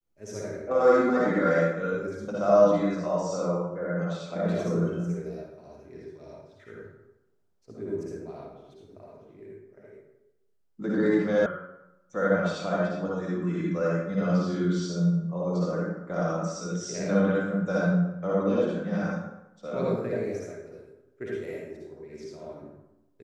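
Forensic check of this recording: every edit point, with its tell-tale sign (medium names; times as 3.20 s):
11.46 s: sound stops dead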